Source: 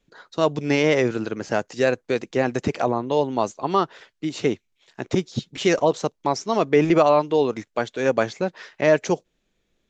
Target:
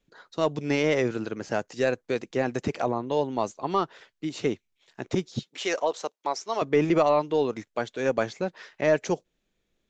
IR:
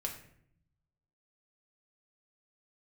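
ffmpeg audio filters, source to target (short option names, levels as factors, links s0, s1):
-filter_complex "[0:a]asettb=1/sr,asplit=3[s0][s1][s2];[s0]atrim=end=5.434[s3];[s1]atrim=start=5.43:end=6.62,asetpts=PTS-STARTPTS,afade=t=in:d=0.004:c=qsin,afade=t=out:st=1.186:d=0.004:c=qsin,highpass=500[s4];[s2]atrim=start=6.616[s5];[s3][s4]acrossfade=d=0.004:c1=hsin:c2=qsin[s6];[s6][s5]acrossfade=d=0.004:c1=qsin:c2=hsin,aeval=exprs='0.631*(cos(1*acos(clip(val(0)/0.631,-1,1)))-cos(1*PI/2))+0.0282*(cos(2*acos(clip(val(0)/0.631,-1,1)))-cos(2*PI/2))+0.00708*(cos(5*acos(clip(val(0)/0.631,-1,1)))-cos(5*PI/2))':c=same,volume=0.562"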